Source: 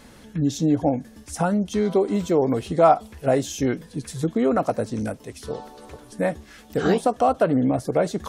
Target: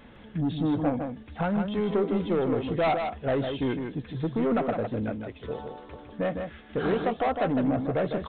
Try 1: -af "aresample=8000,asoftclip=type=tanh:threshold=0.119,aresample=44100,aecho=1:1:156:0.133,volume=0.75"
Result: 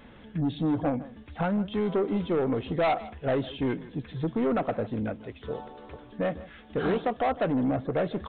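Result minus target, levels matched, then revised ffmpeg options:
echo-to-direct -11.5 dB
-af "aresample=8000,asoftclip=type=tanh:threshold=0.119,aresample=44100,aecho=1:1:156:0.501,volume=0.75"

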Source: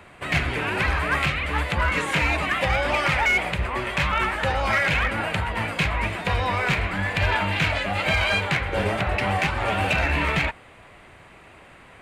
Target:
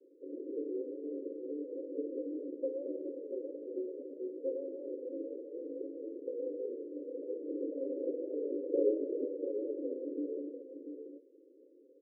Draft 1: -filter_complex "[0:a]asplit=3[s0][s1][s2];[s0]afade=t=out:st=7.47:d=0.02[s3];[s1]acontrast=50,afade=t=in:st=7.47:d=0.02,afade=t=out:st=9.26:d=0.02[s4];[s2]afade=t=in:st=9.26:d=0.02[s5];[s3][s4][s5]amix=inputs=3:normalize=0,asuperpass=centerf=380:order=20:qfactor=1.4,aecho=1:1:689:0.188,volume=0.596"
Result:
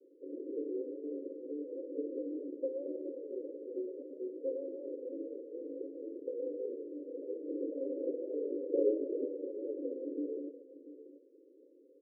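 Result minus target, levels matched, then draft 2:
echo-to-direct -6.5 dB
-filter_complex "[0:a]asplit=3[s0][s1][s2];[s0]afade=t=out:st=7.47:d=0.02[s3];[s1]acontrast=50,afade=t=in:st=7.47:d=0.02,afade=t=out:st=9.26:d=0.02[s4];[s2]afade=t=in:st=9.26:d=0.02[s5];[s3][s4][s5]amix=inputs=3:normalize=0,asuperpass=centerf=380:order=20:qfactor=1.4,aecho=1:1:689:0.398,volume=0.596"

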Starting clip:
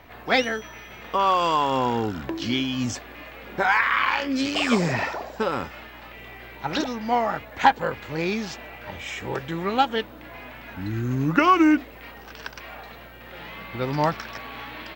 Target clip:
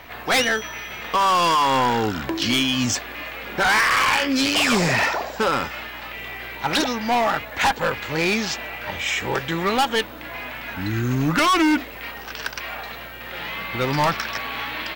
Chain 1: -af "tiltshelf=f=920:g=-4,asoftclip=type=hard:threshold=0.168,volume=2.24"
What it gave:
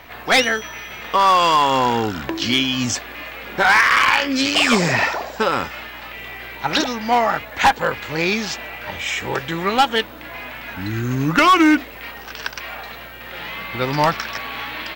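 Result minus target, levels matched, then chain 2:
hard clipper: distortion -6 dB
-af "tiltshelf=f=920:g=-4,asoftclip=type=hard:threshold=0.075,volume=2.24"

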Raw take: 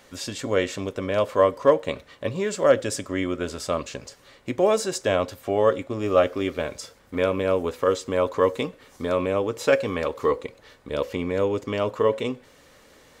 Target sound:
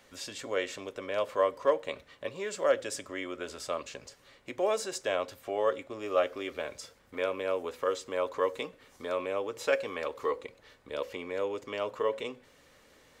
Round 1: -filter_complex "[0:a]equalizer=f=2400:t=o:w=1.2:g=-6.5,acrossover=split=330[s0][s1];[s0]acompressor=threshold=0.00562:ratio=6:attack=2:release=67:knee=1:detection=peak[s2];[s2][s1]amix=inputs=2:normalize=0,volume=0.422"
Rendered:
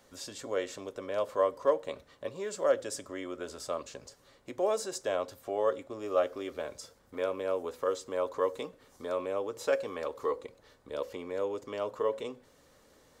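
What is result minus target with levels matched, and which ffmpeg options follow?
2 kHz band -5.0 dB
-filter_complex "[0:a]equalizer=f=2400:t=o:w=1.2:g=2,acrossover=split=330[s0][s1];[s0]acompressor=threshold=0.00562:ratio=6:attack=2:release=67:knee=1:detection=peak[s2];[s2][s1]amix=inputs=2:normalize=0,volume=0.422"

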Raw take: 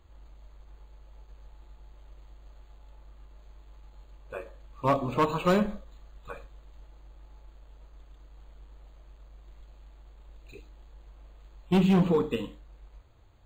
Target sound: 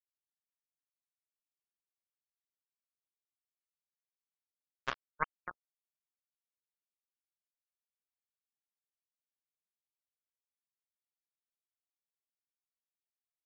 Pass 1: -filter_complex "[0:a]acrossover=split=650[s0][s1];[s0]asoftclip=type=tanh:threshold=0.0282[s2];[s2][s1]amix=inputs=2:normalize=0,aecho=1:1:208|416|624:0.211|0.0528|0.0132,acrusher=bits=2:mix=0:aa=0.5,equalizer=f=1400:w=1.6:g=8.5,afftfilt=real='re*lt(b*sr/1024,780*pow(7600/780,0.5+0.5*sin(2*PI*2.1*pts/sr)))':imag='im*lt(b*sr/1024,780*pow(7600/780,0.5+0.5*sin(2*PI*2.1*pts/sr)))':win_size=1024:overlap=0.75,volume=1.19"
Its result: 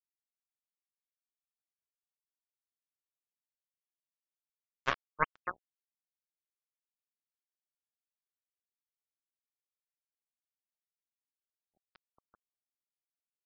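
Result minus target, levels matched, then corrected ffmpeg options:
saturation: distortion -6 dB
-filter_complex "[0:a]acrossover=split=650[s0][s1];[s0]asoftclip=type=tanh:threshold=0.00841[s2];[s2][s1]amix=inputs=2:normalize=0,aecho=1:1:208|416|624:0.211|0.0528|0.0132,acrusher=bits=2:mix=0:aa=0.5,equalizer=f=1400:w=1.6:g=8.5,afftfilt=real='re*lt(b*sr/1024,780*pow(7600/780,0.5+0.5*sin(2*PI*2.1*pts/sr)))':imag='im*lt(b*sr/1024,780*pow(7600/780,0.5+0.5*sin(2*PI*2.1*pts/sr)))':win_size=1024:overlap=0.75,volume=1.19"

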